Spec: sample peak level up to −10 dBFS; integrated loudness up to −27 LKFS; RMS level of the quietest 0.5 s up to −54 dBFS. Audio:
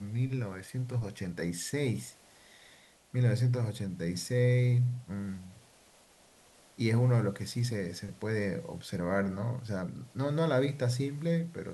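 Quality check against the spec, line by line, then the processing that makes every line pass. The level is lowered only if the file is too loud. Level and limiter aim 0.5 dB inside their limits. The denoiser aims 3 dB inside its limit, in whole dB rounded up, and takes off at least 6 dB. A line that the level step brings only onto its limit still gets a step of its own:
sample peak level −15.5 dBFS: in spec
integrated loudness −32.0 LKFS: in spec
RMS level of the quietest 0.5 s −61 dBFS: in spec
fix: no processing needed

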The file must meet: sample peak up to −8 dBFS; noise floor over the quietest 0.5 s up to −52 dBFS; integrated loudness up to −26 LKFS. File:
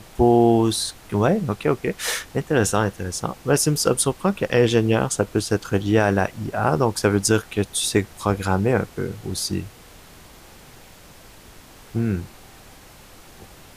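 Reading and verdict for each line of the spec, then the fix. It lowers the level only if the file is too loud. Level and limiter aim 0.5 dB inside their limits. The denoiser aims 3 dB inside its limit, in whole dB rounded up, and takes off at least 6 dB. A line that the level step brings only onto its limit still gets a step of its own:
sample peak −5.5 dBFS: out of spec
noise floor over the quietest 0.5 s −46 dBFS: out of spec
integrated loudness −21.5 LKFS: out of spec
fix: broadband denoise 6 dB, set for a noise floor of −46 dBFS
level −5 dB

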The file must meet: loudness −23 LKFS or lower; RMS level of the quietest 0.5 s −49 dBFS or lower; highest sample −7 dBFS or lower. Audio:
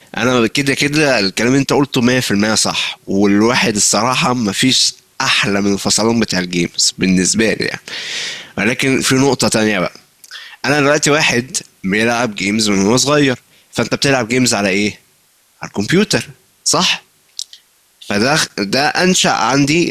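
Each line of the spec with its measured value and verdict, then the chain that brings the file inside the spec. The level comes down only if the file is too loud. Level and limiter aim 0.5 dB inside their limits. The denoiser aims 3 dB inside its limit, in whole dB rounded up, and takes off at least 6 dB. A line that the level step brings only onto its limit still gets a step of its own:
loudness −14.0 LKFS: out of spec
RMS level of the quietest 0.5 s −54 dBFS: in spec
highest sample −3.0 dBFS: out of spec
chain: level −9.5 dB

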